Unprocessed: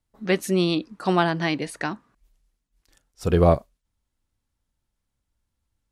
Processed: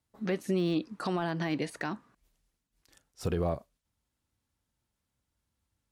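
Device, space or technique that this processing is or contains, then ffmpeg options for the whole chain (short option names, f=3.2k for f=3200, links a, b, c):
podcast mastering chain: -af "highpass=67,deesser=0.9,acompressor=threshold=-26dB:ratio=2.5,alimiter=limit=-19.5dB:level=0:latency=1:release=110" -ar 48000 -c:a libmp3lame -b:a 112k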